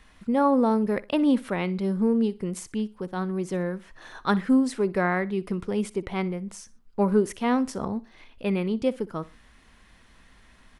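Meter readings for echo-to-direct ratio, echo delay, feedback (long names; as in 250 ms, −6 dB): −19.5 dB, 61 ms, 31%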